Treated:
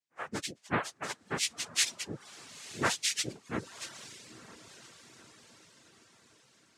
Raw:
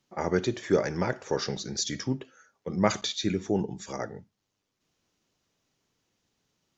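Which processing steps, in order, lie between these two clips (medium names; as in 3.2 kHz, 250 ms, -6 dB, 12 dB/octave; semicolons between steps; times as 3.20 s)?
partials quantised in pitch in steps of 6 st; spectral noise reduction 19 dB; noise-vocoded speech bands 3; on a send: echo that smears into a reverb 955 ms, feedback 50%, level -14.5 dB; on the sum: reverb removal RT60 0.67 s; trim -8.5 dB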